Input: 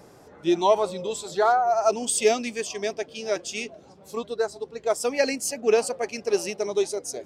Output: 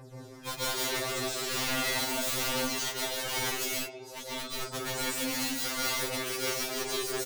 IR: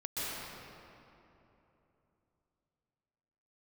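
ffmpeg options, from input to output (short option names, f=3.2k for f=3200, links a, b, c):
-filter_complex "[0:a]asplit=2[a][b];[b]acompressor=threshold=-29dB:ratio=6,volume=0dB[c];[a][c]amix=inputs=2:normalize=0,aphaser=in_gain=1:out_gain=1:delay=3.2:decay=0.77:speed=0.42:type=triangular,asplit=2[d][e];[e]adelay=149,lowpass=f=3.3k:p=1,volume=-16.5dB,asplit=2[f][g];[g]adelay=149,lowpass=f=3.3k:p=1,volume=0.36,asplit=2[h][i];[i]adelay=149,lowpass=f=3.3k:p=1,volume=0.36[j];[d][f][h][j]amix=inputs=4:normalize=0,aeval=exprs='(mod(8.41*val(0)+1,2)-1)/8.41':c=same[k];[1:a]atrim=start_sample=2205,afade=t=out:st=0.27:d=0.01,atrim=end_sample=12348[l];[k][l]afir=irnorm=-1:irlink=0,afftfilt=real='re*2.45*eq(mod(b,6),0)':imag='im*2.45*eq(mod(b,6),0)':win_size=2048:overlap=0.75,volume=-6dB"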